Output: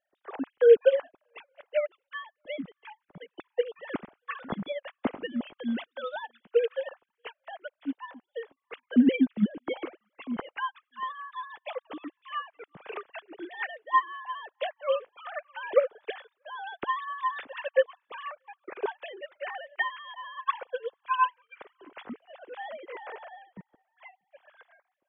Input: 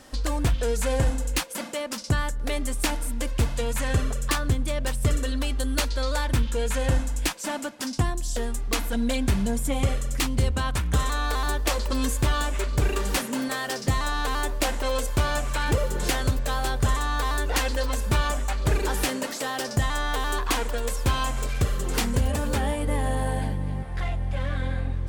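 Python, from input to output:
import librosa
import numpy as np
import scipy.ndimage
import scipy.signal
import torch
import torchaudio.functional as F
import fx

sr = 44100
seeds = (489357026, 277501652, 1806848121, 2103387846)

y = fx.sine_speech(x, sr)
y = y + 10.0 ** (-22.5 / 20.0) * np.pad(y, (int(636 * sr / 1000.0), 0))[:len(y)]
y = fx.upward_expand(y, sr, threshold_db=-39.0, expansion=2.5)
y = F.gain(torch.from_numpy(y), 1.5).numpy()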